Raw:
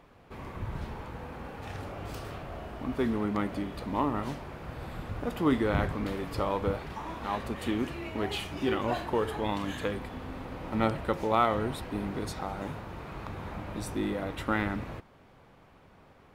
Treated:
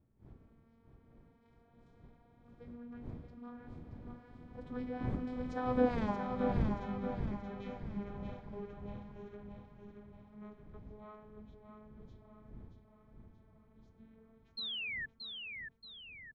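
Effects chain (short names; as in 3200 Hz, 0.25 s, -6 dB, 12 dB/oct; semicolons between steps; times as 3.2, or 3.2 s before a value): vocoder on a gliding note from G3, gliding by +5 st; wind noise 160 Hz -34 dBFS; Doppler pass-by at 6.01, 45 m/s, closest 4.8 m; bell 2800 Hz +4 dB 1.3 oct; notch 2800 Hz, Q 7.1; painted sound fall, 14.57–15.06, 1700–4300 Hz -48 dBFS; on a send: feedback echo 0.628 s, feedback 46%, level -5.5 dB; on the sum: gain +8 dB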